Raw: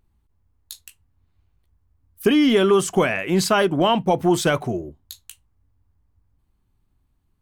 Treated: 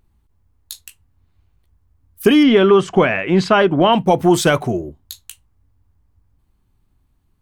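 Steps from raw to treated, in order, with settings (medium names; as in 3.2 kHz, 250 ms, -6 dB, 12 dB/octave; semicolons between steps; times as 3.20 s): 2.43–3.93 s: low-pass 3.3 kHz 12 dB/octave; trim +5 dB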